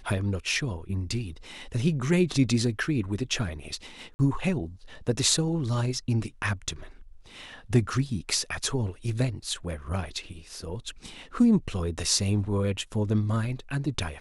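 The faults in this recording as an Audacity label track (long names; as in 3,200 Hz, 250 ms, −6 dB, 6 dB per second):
4.140000	4.190000	drop-out 50 ms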